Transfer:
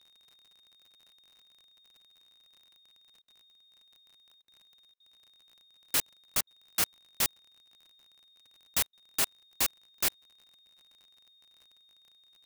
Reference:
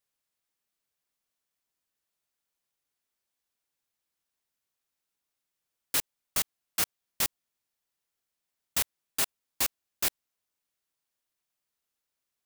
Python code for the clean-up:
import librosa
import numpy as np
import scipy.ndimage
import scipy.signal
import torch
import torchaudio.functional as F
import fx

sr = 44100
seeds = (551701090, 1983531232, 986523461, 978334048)

y = fx.fix_declick_ar(x, sr, threshold=6.5)
y = fx.notch(y, sr, hz=3700.0, q=30.0)
y = fx.fix_interpolate(y, sr, at_s=(3.22, 4.42, 4.94, 6.41, 8.87), length_ms=59.0)